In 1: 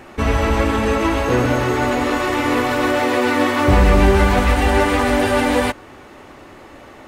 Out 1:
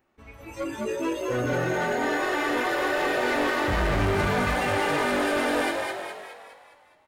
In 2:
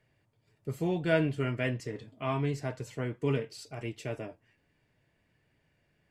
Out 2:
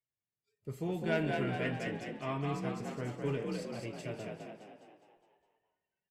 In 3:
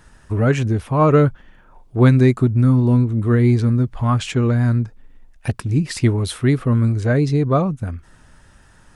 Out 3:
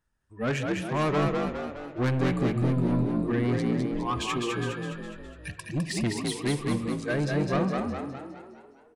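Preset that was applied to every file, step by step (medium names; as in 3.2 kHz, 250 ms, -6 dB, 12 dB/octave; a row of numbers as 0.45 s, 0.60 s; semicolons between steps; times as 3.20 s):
spectral noise reduction 25 dB; dynamic bell 1.8 kHz, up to +4 dB, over -35 dBFS, Q 1.1; saturation -17.5 dBFS; on a send: frequency-shifting echo 206 ms, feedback 51%, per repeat +47 Hz, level -3.5 dB; on the sum: spring tank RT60 1.7 s, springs 48 ms, chirp 25 ms, DRR 12.5 dB; trim -5.5 dB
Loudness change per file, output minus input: -8.5 LU, -4.0 LU, -11.0 LU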